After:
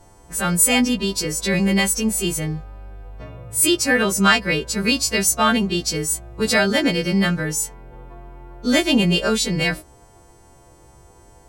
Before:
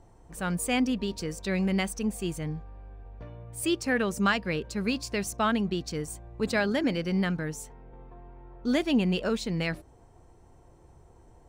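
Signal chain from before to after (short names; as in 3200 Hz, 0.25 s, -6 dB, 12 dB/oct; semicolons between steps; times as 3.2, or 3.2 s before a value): frequency quantiser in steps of 2 st; gain +8.5 dB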